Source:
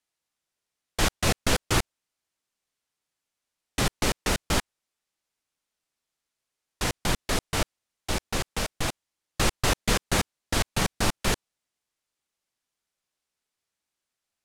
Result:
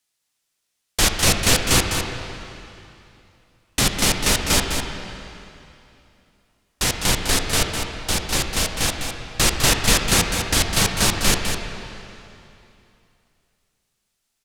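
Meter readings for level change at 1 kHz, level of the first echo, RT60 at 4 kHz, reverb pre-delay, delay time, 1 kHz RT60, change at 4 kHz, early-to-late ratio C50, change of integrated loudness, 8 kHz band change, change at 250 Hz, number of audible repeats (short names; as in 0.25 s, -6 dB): +5.0 dB, -7.5 dB, 2.6 s, 6 ms, 0.204 s, 2.8 s, +10.0 dB, 2.5 dB, +8.0 dB, +11.5 dB, +5.5 dB, 1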